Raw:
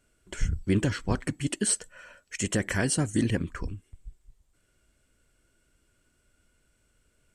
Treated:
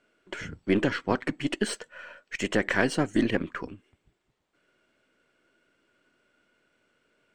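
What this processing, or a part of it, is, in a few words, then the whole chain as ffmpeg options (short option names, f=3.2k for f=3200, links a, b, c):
crystal radio: -af "highpass=270,lowpass=3.3k,aeval=exprs='if(lt(val(0),0),0.708*val(0),val(0))':c=same,volume=6.5dB"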